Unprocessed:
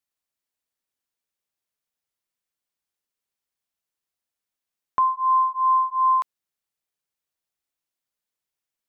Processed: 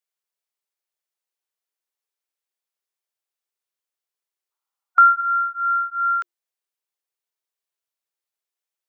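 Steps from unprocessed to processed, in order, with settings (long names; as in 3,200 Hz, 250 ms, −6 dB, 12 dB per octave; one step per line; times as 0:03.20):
gain on a spectral selection 0:04.51–0:05.21, 390–1,100 Hz +10 dB
frequency shifter +340 Hz
level −2 dB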